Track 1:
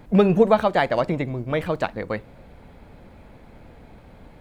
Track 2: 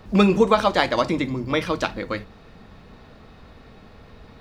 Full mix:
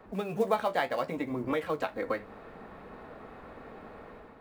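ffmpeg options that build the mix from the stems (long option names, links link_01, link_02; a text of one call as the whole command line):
ffmpeg -i stem1.wav -i stem2.wav -filter_complex "[0:a]highpass=frequency=350:poles=1,acrusher=bits=7:mode=log:mix=0:aa=0.000001,flanger=delay=9.1:depth=7.9:regen=47:speed=0.72:shape=sinusoidal,volume=-11dB,asplit=2[link_01][link_02];[1:a]acompressor=threshold=-28dB:ratio=6,acrossover=split=260 2100:gain=0.2 1 0.0708[link_03][link_04][link_05];[link_03][link_04][link_05]amix=inputs=3:normalize=0,volume=-1,volume=-3dB[link_06];[link_02]apad=whole_len=194350[link_07];[link_06][link_07]sidechaincompress=threshold=-44dB:ratio=8:attack=39:release=324[link_08];[link_01][link_08]amix=inputs=2:normalize=0,dynaudnorm=framelen=130:gausssize=5:maxgain=7dB" out.wav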